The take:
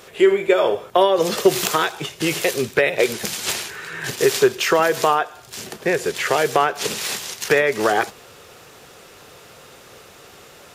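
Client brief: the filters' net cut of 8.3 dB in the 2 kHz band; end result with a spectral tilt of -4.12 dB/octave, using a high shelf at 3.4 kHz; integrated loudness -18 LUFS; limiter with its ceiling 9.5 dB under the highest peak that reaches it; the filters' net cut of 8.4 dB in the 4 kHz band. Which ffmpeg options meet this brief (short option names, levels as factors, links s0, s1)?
-af "equalizer=f=2000:t=o:g=-8,highshelf=f=3400:g=-6,equalizer=f=4000:t=o:g=-4,volume=2.37,alimiter=limit=0.501:level=0:latency=1"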